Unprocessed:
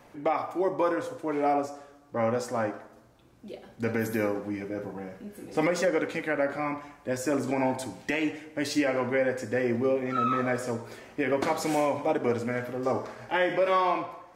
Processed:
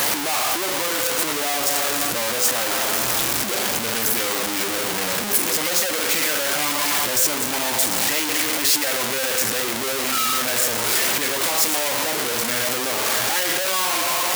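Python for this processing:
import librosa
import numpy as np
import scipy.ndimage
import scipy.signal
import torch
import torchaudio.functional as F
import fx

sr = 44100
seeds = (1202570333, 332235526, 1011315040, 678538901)

y = np.sign(x) * np.sqrt(np.mean(np.square(x)))
y = fx.tilt_eq(y, sr, slope=3.0)
y = y * 10.0 ** (5.0 / 20.0)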